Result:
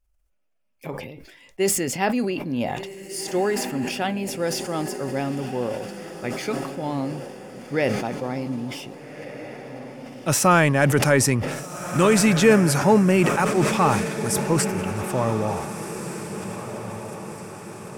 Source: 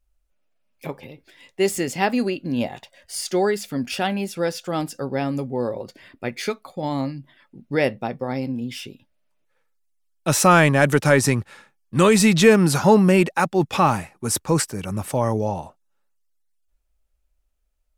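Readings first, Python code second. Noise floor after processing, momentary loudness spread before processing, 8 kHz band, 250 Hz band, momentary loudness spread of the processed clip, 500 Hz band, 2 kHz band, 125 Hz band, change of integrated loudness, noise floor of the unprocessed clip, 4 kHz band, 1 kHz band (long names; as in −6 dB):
−53 dBFS, 17 LU, +0.5 dB, −1.0 dB, 20 LU, −1.5 dB, −1.5 dB, −1.0 dB, −2.0 dB, −69 dBFS, −1.5 dB, −1.5 dB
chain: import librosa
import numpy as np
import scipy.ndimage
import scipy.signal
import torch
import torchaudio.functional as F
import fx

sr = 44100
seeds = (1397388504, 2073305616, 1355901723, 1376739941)

y = fx.peak_eq(x, sr, hz=3900.0, db=-6.0, octaves=0.3)
y = fx.echo_diffused(y, sr, ms=1601, feedback_pct=52, wet_db=-10.5)
y = fx.sustainer(y, sr, db_per_s=47.0)
y = y * 10.0 ** (-2.5 / 20.0)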